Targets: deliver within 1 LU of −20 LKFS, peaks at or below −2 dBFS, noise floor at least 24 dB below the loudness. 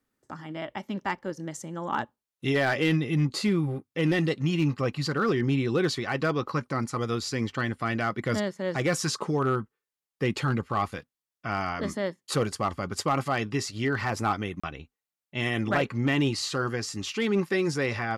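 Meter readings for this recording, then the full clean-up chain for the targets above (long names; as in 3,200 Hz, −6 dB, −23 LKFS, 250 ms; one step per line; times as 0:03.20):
share of clipped samples 0.4%; peaks flattened at −17.5 dBFS; number of dropouts 1; longest dropout 35 ms; integrated loudness −28.0 LKFS; sample peak −17.5 dBFS; target loudness −20.0 LKFS
→ clipped peaks rebuilt −17.5 dBFS
repair the gap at 0:14.60, 35 ms
level +8 dB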